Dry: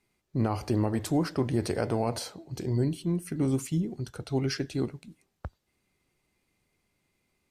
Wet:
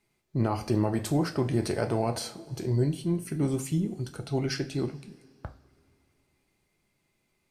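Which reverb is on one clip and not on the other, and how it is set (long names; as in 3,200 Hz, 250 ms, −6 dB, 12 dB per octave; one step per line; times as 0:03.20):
coupled-rooms reverb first 0.31 s, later 2.8 s, from −22 dB, DRR 6 dB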